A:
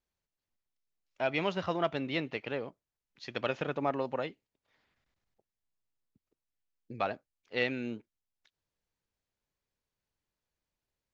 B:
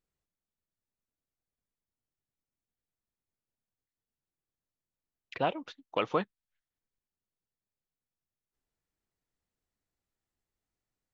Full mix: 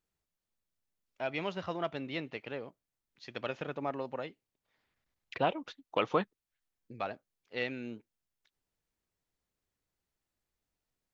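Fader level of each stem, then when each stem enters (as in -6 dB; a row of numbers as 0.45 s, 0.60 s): -4.5 dB, 0.0 dB; 0.00 s, 0.00 s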